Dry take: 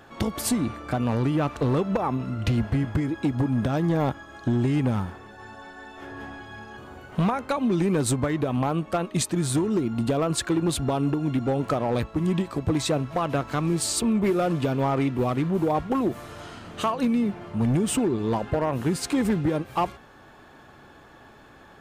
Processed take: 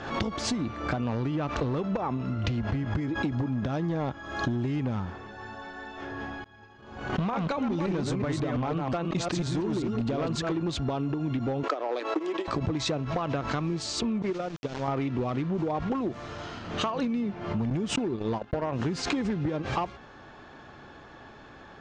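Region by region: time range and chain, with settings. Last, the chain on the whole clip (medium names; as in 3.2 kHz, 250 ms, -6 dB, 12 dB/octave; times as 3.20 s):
6.44–10.52 s: chunks repeated in reverse 178 ms, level -3 dB + expander -31 dBFS + overload inside the chain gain 17.5 dB
11.63–12.48 s: transient shaper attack +8 dB, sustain -9 dB + steep high-pass 300 Hz 48 dB/octave
14.22–14.88 s: gate -22 dBFS, range -27 dB + word length cut 8-bit, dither none
17.70–18.72 s: gate -26 dBFS, range -54 dB + tape noise reduction on one side only encoder only
whole clip: compression, threshold -28 dBFS; steep low-pass 6.5 kHz 36 dB/octave; swell ahead of each attack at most 69 dB/s; trim +1.5 dB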